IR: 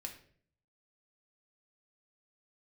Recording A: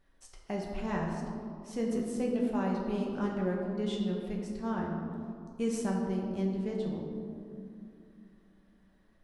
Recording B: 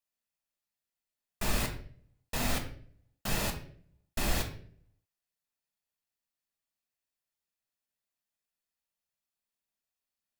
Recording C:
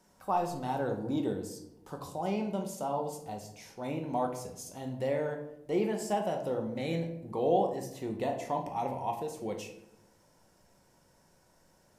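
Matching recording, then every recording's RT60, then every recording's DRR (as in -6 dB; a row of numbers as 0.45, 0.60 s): B; 2.5, 0.55, 0.85 s; -2.0, 2.5, 2.5 dB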